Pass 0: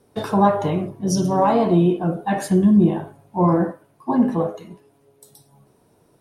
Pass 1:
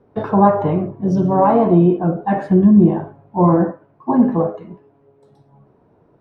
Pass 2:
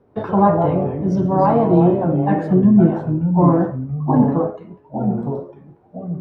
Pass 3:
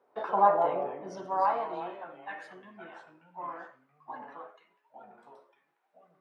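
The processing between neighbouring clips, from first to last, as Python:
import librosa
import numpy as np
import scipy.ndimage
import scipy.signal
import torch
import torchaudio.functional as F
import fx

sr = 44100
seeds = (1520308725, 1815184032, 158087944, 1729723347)

y1 = scipy.signal.sosfilt(scipy.signal.butter(2, 1500.0, 'lowpass', fs=sr, output='sos'), x)
y1 = y1 * librosa.db_to_amplitude(4.0)
y2 = fx.echo_pitch(y1, sr, ms=86, semitones=-3, count=2, db_per_echo=-6.0)
y2 = y2 * librosa.db_to_amplitude(-2.0)
y3 = fx.filter_sweep_highpass(y2, sr, from_hz=710.0, to_hz=1900.0, start_s=0.92, end_s=2.26, q=0.92)
y3 = y3 * librosa.db_to_amplitude(-5.5)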